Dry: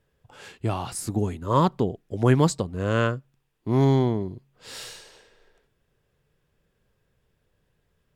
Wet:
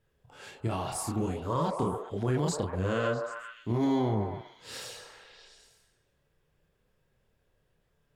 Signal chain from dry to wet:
multi-voice chorus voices 2, 0.53 Hz, delay 29 ms, depth 3.9 ms
brickwall limiter −20.5 dBFS, peak gain reduction 9.5 dB
echo through a band-pass that steps 130 ms, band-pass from 610 Hz, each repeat 0.7 octaves, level −2 dB

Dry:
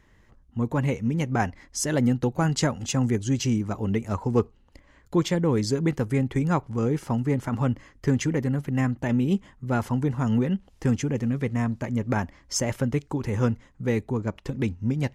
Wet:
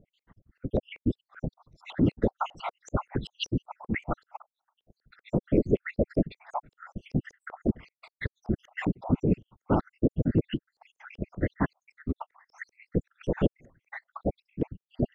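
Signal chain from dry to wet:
time-frequency cells dropped at random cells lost 77%
random phases in short frames
auto-filter low-pass saw up 5.2 Hz 460–4,900 Hz

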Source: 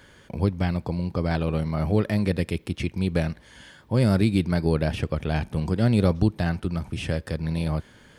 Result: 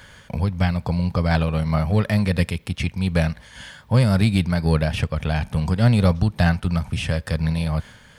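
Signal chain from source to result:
in parallel at −11 dB: gain into a clipping stage and back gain 18 dB
on the sum: parametric band 340 Hz −13.5 dB 0.79 octaves
amplitude modulation by smooth noise, depth 55%
level +7.5 dB

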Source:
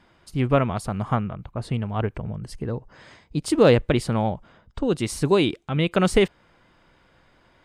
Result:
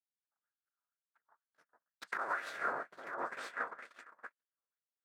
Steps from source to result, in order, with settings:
sub-harmonics by changed cycles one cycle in 3, inverted
source passing by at 0:02.86, 40 m/s, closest 20 metres
rotating-speaker cabinet horn 5 Hz, later 0.65 Hz, at 0:02.21
phase-vocoder stretch with locked phases 0.66×
mains-hum notches 60/120/180 Hz
on a send: echo whose low-pass opens from repeat to repeat 398 ms, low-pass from 200 Hz, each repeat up 2 octaves, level −6 dB
on the sum: dense smooth reverb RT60 1.2 s, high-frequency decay 0.85×, pre-delay 105 ms, DRR −2 dB
noise gate −27 dBFS, range −60 dB
compressor whose output falls as the input rises −27 dBFS, ratio −1
high shelf with overshoot 2,100 Hz −11.5 dB, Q 3
auto-filter band-pass sine 2.1 Hz 980–3,700 Hz
spectral tilt +4.5 dB per octave
level +3 dB

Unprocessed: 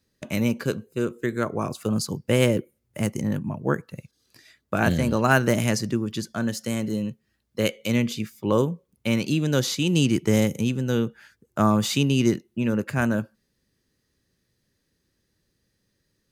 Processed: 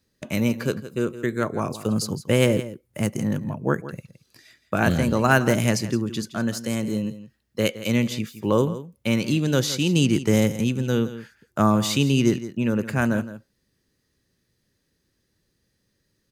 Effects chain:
single-tap delay 166 ms −14 dB
level +1 dB

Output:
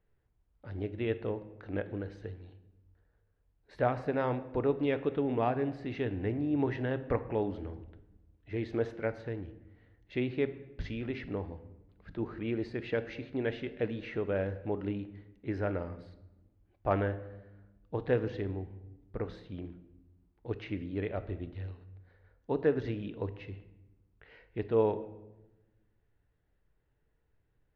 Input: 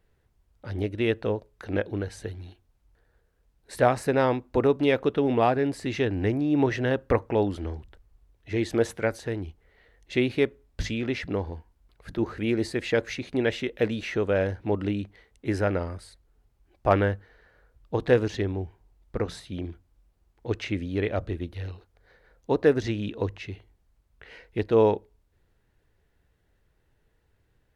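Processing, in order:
high-frequency loss of the air 260 metres
rectangular room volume 450 cubic metres, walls mixed, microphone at 0.37 metres
level −7.5 dB

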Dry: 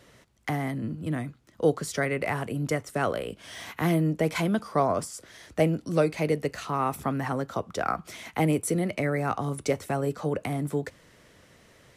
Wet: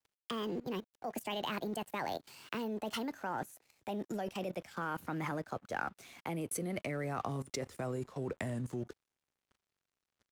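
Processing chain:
gliding playback speed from 161% → 71%
dead-zone distortion −50.5 dBFS
output level in coarse steps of 18 dB
level −1 dB

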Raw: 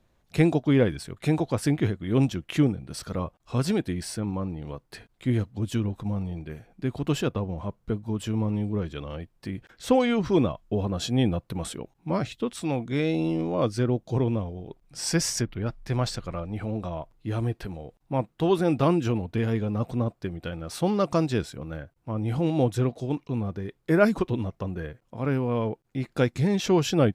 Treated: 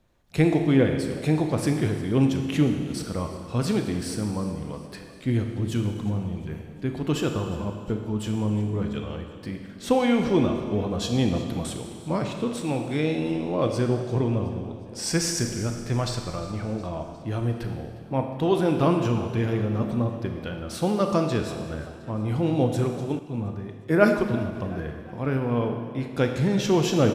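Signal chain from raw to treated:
echo with shifted repeats 358 ms, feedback 56%, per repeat +45 Hz, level −19 dB
four-comb reverb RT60 1.7 s, combs from 26 ms, DRR 4.5 dB
0:23.19–0:24.55: multiband upward and downward expander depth 40%

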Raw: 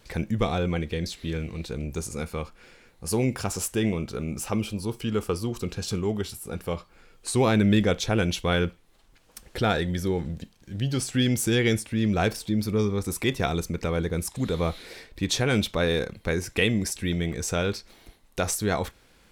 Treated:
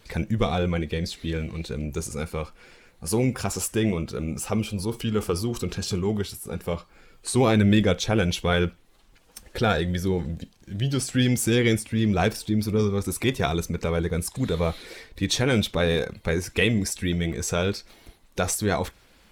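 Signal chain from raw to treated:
spectral magnitudes quantised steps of 15 dB
0:04.74–0:06.22: transient designer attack 0 dB, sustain +4 dB
level +2 dB

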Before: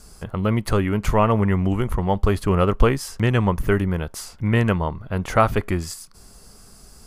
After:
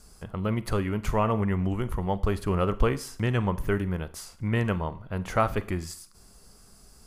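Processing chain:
four-comb reverb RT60 0.47 s, combs from 33 ms, DRR 15 dB
level −7 dB

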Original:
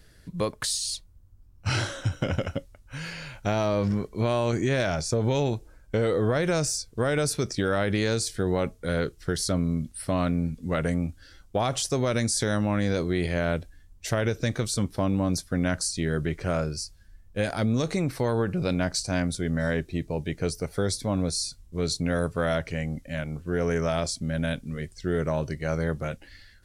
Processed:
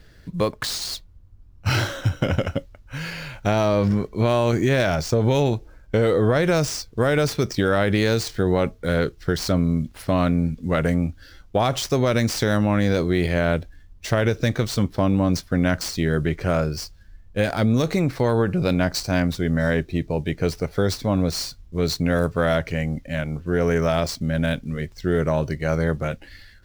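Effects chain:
running median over 5 samples
level +5.5 dB

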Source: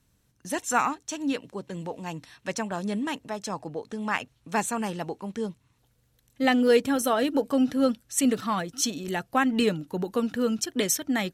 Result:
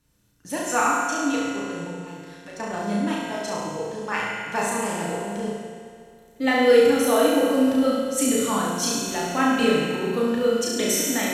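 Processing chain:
0:01.87–0:02.60: downward compressor 2.5 to 1, threshold −44 dBFS, peak gain reduction 12.5 dB
on a send: flutter between parallel walls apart 5.9 metres, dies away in 0.94 s
on the sum: feedback delay network reverb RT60 2.4 s, low-frequency decay 1×, high-frequency decay 0.9×, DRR −1.5 dB
level −2.5 dB

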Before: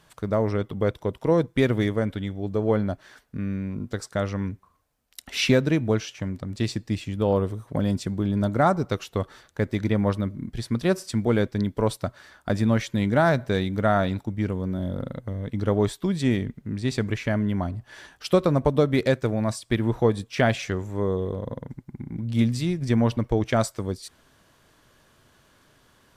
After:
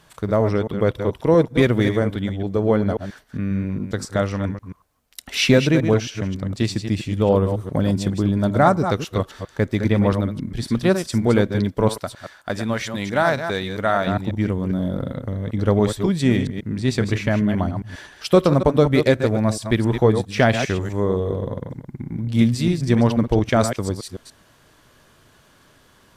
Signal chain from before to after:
delay that plays each chunk backwards 135 ms, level −8 dB
0:11.89–0:14.07: low-shelf EQ 400 Hz −11 dB
level +4.5 dB

